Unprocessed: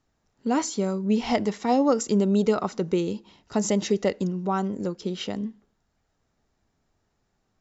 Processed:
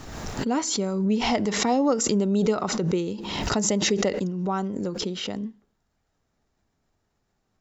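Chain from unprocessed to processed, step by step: backwards sustainer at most 37 dB/s; gain -1.5 dB

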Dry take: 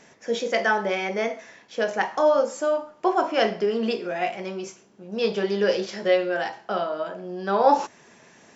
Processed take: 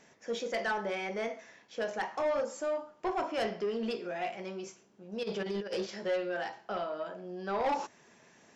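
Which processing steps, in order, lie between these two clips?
5.23–5.87 negative-ratio compressor -25 dBFS, ratio -0.5; soft clip -17.5 dBFS, distortion -12 dB; gain -8 dB

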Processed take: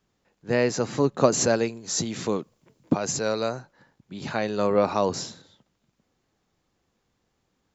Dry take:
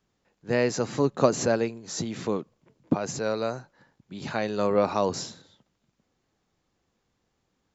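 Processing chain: 1.32–3.49 high shelf 4500 Hz +9 dB; gain +1.5 dB

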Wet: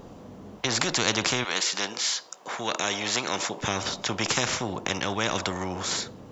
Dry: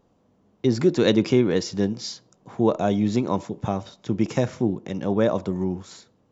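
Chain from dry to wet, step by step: 1.43–3.6 HPF 1400 Hz -> 470 Hz 12 dB/oct; spectral compressor 4:1

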